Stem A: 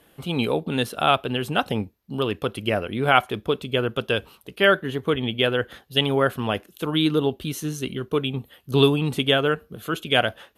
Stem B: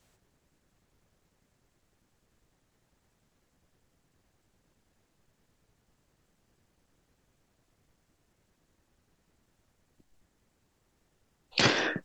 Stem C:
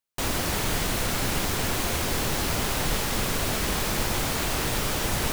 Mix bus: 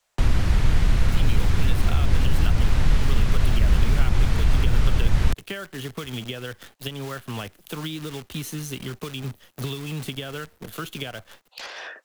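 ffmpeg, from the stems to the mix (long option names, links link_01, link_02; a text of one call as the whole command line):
ffmpeg -i stem1.wav -i stem2.wav -i stem3.wav -filter_complex "[0:a]acompressor=threshold=-24dB:ratio=16,acrusher=bits=7:dc=4:mix=0:aa=0.000001,adelay=900,volume=1.5dB[link_01];[1:a]highpass=frequency=560:width=0.5412,highpass=frequency=560:width=1.3066,acompressor=threshold=-30dB:ratio=6,asoftclip=type=tanh:threshold=-26dB,volume=-1dB[link_02];[2:a]aemphasis=mode=reproduction:type=riaa,volume=2dB[link_03];[link_01][link_02][link_03]amix=inputs=3:normalize=0,acrossover=split=82|170|1200[link_04][link_05][link_06][link_07];[link_04]acompressor=threshold=-14dB:ratio=4[link_08];[link_05]acompressor=threshold=-27dB:ratio=4[link_09];[link_06]acompressor=threshold=-36dB:ratio=4[link_10];[link_07]acompressor=threshold=-33dB:ratio=4[link_11];[link_08][link_09][link_10][link_11]amix=inputs=4:normalize=0" out.wav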